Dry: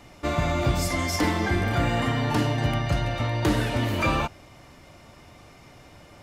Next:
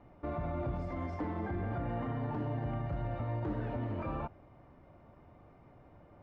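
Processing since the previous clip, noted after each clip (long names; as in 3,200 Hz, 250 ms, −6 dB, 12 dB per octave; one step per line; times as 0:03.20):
brickwall limiter −19.5 dBFS, peak gain reduction 7 dB
low-pass filter 1,100 Hz 12 dB per octave
level −7.5 dB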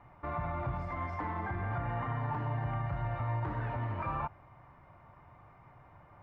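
octave-band graphic EQ 125/250/500/1,000/2,000 Hz +6/−6/−4/+10/+7 dB
level −2 dB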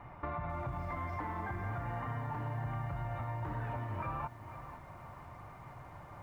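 downward compressor 4 to 1, threshold −44 dBFS, peak gain reduction 12 dB
feedback echo at a low word length 493 ms, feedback 35%, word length 11 bits, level −11.5 dB
level +6.5 dB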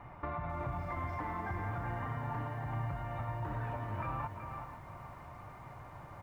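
single-tap delay 374 ms −7.5 dB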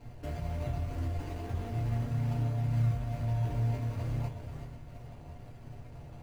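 running median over 41 samples
in parallel at −6 dB: sample-and-hold swept by an LFO 25×, swing 100% 1.1 Hz
on the sum: convolution reverb RT60 0.25 s, pre-delay 4 ms, DRR −2 dB
level −3 dB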